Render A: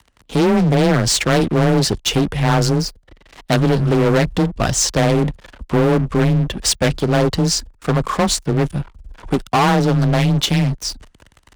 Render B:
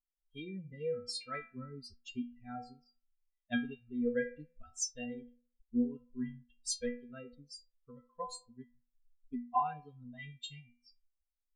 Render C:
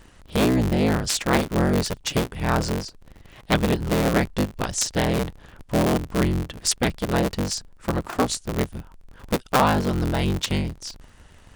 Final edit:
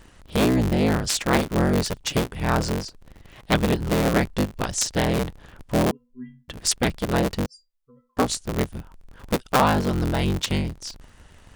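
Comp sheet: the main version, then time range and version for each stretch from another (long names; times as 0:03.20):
C
0:05.91–0:06.48: punch in from B
0:07.46–0:08.17: punch in from B
not used: A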